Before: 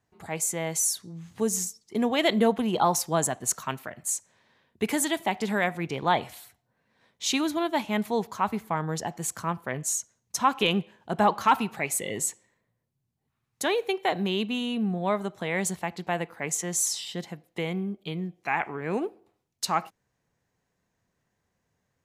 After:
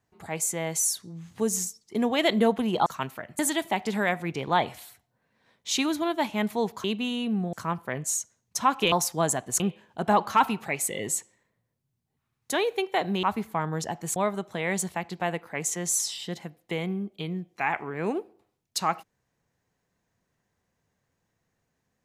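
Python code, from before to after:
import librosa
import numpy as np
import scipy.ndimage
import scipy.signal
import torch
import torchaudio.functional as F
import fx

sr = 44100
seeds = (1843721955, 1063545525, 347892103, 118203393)

y = fx.edit(x, sr, fx.move(start_s=2.86, length_s=0.68, to_s=10.71),
    fx.cut(start_s=4.07, length_s=0.87),
    fx.swap(start_s=8.39, length_s=0.93, other_s=14.34, other_length_s=0.69), tone=tone)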